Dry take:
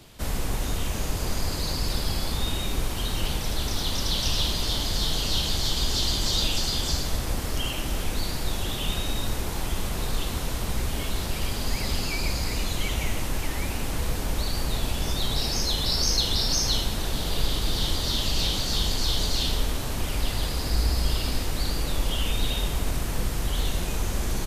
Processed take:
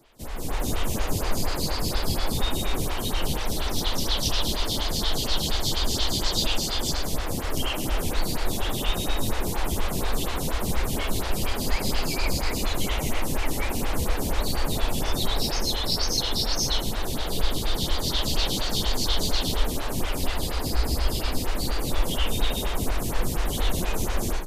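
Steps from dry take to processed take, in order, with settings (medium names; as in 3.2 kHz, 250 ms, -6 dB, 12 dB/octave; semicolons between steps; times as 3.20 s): level rider gain up to 11.5 dB; lamp-driven phase shifter 4.2 Hz; trim -4.5 dB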